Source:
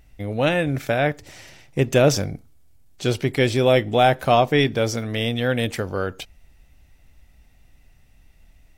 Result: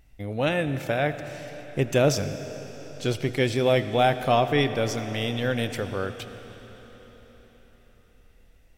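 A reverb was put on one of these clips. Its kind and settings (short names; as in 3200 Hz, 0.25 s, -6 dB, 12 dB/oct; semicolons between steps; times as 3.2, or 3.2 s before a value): digital reverb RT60 4.8 s, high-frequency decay 0.95×, pre-delay 40 ms, DRR 10.5 dB; gain -4.5 dB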